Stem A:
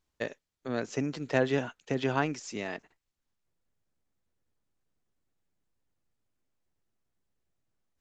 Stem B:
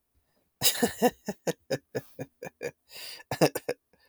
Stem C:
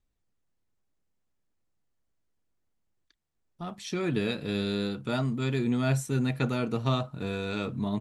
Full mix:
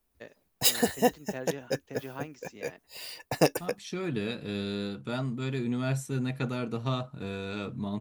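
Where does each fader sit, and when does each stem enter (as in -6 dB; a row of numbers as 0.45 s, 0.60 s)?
-12.5 dB, 0.0 dB, -3.5 dB; 0.00 s, 0.00 s, 0.00 s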